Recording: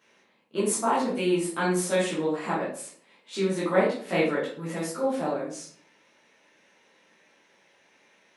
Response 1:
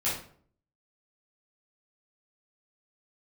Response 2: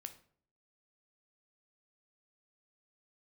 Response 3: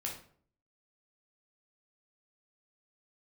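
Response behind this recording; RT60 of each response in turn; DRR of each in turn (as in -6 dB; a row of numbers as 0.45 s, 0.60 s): 1; 0.55 s, 0.55 s, 0.55 s; -10.0 dB, 8.0 dB, -2.0 dB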